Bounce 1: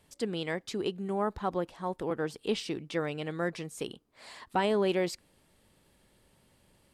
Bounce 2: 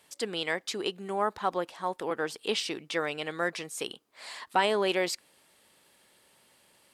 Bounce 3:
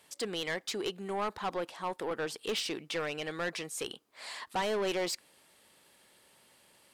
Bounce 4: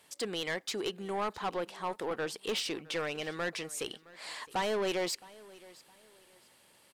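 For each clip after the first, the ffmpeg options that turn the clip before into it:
-af "highpass=f=870:p=1,volume=7dB"
-af "asoftclip=type=tanh:threshold=-27.5dB"
-af "aecho=1:1:665|1330:0.0841|0.0244"

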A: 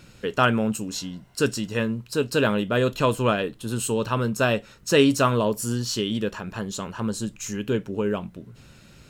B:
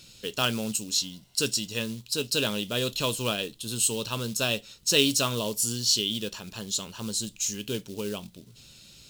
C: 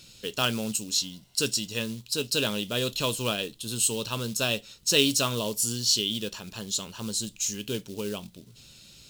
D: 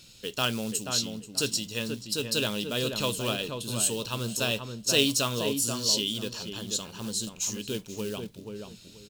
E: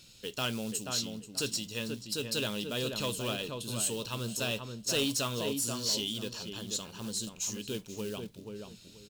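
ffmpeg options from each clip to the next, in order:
-af "acrusher=bits=6:mode=log:mix=0:aa=0.000001,highshelf=f=2.5k:t=q:w=1.5:g=12.5,volume=-8dB"
-af anull
-filter_complex "[0:a]asplit=2[a][b];[b]adelay=483,lowpass=f=1.5k:p=1,volume=-5dB,asplit=2[c][d];[d]adelay=483,lowpass=f=1.5k:p=1,volume=0.24,asplit=2[e][f];[f]adelay=483,lowpass=f=1.5k:p=1,volume=0.24[g];[a][c][e][g]amix=inputs=4:normalize=0,volume=-1.5dB"
-af "asoftclip=type=tanh:threshold=-19.5dB,volume=-3.5dB"

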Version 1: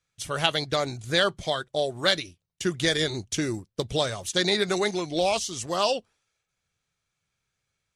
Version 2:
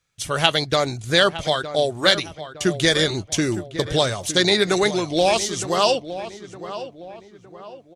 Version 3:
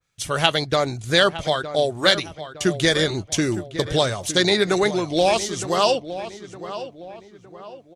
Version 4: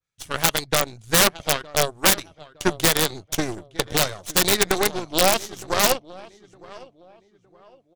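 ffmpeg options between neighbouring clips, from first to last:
-filter_complex "[0:a]asplit=2[a][b];[b]adelay=912,lowpass=f=2.1k:p=1,volume=-12dB,asplit=2[c][d];[d]adelay=912,lowpass=f=2.1k:p=1,volume=0.43,asplit=2[e][f];[f]adelay=912,lowpass=f=2.1k:p=1,volume=0.43,asplit=2[g][h];[h]adelay=912,lowpass=f=2.1k:p=1,volume=0.43[i];[a][c][e][g][i]amix=inputs=5:normalize=0,volume=6dB"
-af "adynamicequalizer=threshold=0.0251:dfrequency=2200:dqfactor=0.7:tfrequency=2200:tqfactor=0.7:attack=5:release=100:ratio=0.375:range=3:mode=cutabove:tftype=highshelf"
-af "aeval=exprs='0.841*(cos(1*acos(clip(val(0)/0.841,-1,1)))-cos(1*PI/2))+0.0188*(cos(3*acos(clip(val(0)/0.841,-1,1)))-cos(3*PI/2))+0.0841*(cos(6*acos(clip(val(0)/0.841,-1,1)))-cos(6*PI/2))+0.0944*(cos(7*acos(clip(val(0)/0.841,-1,1)))-cos(7*PI/2))+0.00668*(cos(8*acos(clip(val(0)/0.841,-1,1)))-cos(8*PI/2))':c=same,aeval=exprs='(mod(2.51*val(0)+1,2)-1)/2.51':c=same,volume=4dB"

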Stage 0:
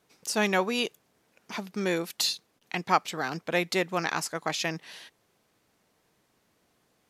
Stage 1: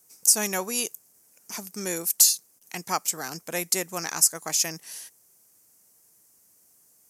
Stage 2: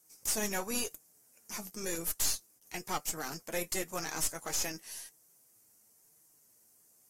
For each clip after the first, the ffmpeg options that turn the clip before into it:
-af "aexciter=amount=12.7:drive=4.5:freq=5.5k,volume=-4.5dB"
-af "aeval=exprs='(tanh(17.8*val(0)+0.45)-tanh(0.45))/17.8':c=same,flanger=delay=6.3:depth=3.3:regen=50:speed=0.96:shape=sinusoidal" -ar 44100 -c:a aac -b:a 48k

